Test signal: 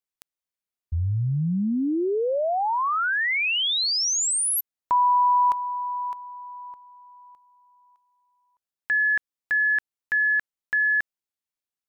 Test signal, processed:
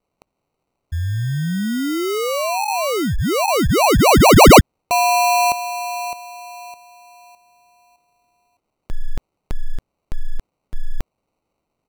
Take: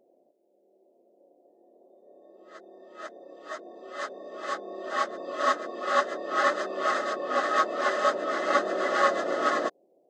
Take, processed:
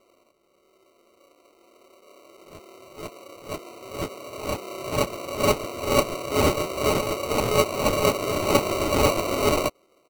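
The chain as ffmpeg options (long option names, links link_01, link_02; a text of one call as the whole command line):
ffmpeg -i in.wav -af "aemphasis=mode=production:type=75fm,aresample=32000,aresample=44100,acrusher=samples=26:mix=1:aa=0.000001,volume=3.5dB" out.wav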